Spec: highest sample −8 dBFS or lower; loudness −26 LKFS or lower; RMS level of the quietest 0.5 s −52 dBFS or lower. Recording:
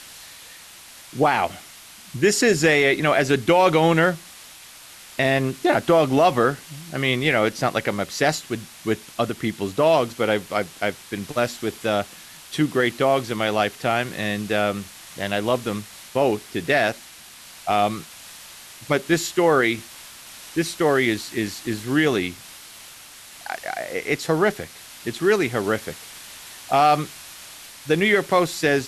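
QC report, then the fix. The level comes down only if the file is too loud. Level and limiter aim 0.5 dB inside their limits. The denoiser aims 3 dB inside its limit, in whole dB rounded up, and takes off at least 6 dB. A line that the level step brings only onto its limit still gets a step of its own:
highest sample −6.5 dBFS: out of spec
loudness −21.5 LKFS: out of spec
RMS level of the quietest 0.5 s −44 dBFS: out of spec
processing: broadband denoise 6 dB, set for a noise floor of −44 dBFS
level −5 dB

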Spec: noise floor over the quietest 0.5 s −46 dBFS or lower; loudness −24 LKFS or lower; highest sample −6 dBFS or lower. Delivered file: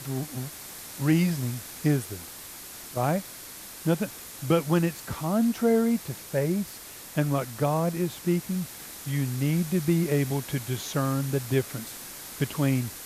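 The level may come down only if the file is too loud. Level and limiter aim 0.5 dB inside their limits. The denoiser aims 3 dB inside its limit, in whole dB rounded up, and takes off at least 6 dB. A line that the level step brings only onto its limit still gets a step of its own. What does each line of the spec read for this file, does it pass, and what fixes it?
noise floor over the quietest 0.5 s −43 dBFS: out of spec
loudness −27.5 LKFS: in spec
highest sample −10.5 dBFS: in spec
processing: broadband denoise 6 dB, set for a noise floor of −43 dBFS

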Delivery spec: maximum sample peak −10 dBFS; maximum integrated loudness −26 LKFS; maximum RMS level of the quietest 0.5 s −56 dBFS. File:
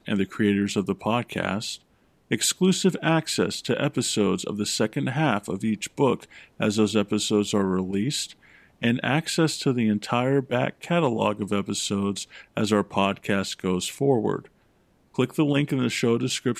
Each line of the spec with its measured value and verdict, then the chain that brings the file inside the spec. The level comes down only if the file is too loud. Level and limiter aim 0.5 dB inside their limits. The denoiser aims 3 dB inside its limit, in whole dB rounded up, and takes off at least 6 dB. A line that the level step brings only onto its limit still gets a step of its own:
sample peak −7.0 dBFS: out of spec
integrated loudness −24.5 LKFS: out of spec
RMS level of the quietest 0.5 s −62 dBFS: in spec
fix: level −2 dB
brickwall limiter −10.5 dBFS

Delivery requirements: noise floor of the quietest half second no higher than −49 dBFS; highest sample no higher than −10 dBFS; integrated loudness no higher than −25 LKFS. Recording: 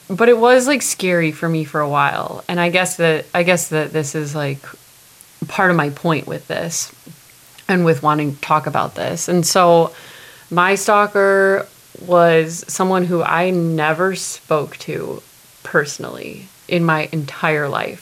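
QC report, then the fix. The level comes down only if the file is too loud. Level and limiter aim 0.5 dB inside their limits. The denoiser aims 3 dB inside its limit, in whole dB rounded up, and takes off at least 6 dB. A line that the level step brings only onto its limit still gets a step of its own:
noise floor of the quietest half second −46 dBFS: out of spec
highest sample −1.5 dBFS: out of spec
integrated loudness −16.5 LKFS: out of spec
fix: level −9 dB

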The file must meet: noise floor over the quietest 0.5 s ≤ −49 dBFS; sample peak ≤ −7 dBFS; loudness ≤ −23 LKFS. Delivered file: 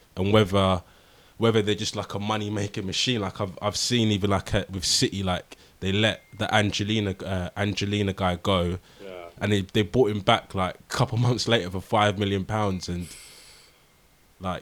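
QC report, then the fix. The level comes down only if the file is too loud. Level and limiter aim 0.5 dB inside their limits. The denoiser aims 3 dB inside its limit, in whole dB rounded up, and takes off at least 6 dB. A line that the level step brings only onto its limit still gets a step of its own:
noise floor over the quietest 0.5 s −59 dBFS: in spec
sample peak −4.5 dBFS: out of spec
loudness −25.0 LKFS: in spec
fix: brickwall limiter −7.5 dBFS

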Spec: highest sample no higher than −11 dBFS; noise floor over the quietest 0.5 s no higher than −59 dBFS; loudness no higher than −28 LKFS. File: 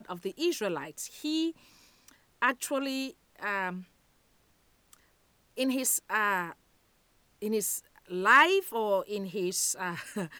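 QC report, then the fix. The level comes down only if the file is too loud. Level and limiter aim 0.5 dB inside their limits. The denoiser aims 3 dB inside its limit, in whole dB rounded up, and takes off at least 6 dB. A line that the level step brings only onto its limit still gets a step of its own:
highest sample −10.0 dBFS: out of spec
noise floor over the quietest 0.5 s −68 dBFS: in spec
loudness −29.5 LKFS: in spec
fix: brickwall limiter −11.5 dBFS

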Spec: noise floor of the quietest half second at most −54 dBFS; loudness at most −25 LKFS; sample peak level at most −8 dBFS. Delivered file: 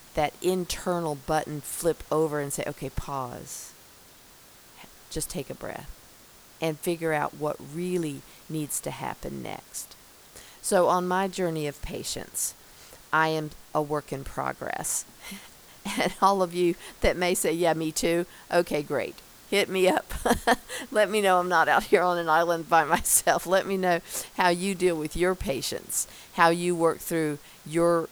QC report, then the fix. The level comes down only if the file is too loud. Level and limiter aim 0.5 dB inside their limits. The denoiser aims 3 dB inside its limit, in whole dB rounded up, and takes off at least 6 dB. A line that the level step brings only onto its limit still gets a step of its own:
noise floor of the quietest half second −52 dBFS: out of spec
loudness −26.5 LKFS: in spec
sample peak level −5.5 dBFS: out of spec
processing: broadband denoise 6 dB, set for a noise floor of −52 dBFS
brickwall limiter −8.5 dBFS

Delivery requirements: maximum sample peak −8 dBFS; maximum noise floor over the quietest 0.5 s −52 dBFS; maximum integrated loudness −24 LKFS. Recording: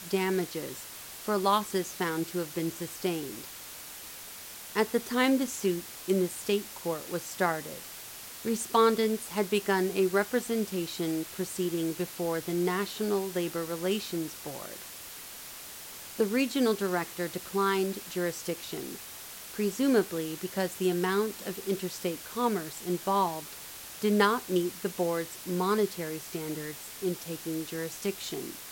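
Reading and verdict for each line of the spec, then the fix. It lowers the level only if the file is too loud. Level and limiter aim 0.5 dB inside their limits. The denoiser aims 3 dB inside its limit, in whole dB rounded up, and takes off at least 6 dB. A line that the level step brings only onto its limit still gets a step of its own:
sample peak −10.5 dBFS: in spec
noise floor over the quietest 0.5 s −44 dBFS: out of spec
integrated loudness −30.5 LKFS: in spec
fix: broadband denoise 11 dB, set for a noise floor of −44 dBFS

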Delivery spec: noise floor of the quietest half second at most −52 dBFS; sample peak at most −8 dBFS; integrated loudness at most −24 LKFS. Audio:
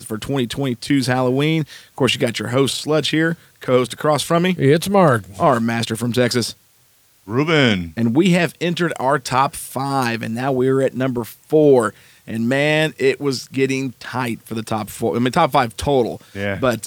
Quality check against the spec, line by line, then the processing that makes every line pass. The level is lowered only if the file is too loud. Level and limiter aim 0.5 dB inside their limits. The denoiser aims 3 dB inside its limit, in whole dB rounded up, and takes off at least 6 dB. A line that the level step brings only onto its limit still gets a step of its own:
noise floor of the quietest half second −55 dBFS: in spec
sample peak −3.0 dBFS: out of spec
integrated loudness −18.5 LKFS: out of spec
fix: level −6 dB

